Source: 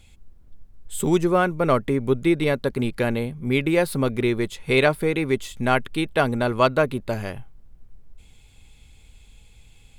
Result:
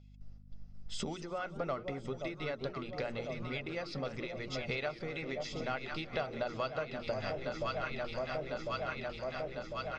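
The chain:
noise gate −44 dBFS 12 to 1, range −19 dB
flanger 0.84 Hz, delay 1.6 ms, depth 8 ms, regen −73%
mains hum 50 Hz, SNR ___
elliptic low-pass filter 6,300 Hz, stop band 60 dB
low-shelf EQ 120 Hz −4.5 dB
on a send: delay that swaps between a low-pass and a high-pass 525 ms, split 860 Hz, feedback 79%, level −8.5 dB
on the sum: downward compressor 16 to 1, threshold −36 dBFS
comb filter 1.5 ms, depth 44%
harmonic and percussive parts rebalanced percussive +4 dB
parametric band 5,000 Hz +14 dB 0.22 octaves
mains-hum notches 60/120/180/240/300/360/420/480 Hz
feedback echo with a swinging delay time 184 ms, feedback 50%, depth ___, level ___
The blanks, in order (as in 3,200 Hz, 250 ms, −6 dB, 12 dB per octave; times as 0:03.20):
27 dB, 202 cents, −18 dB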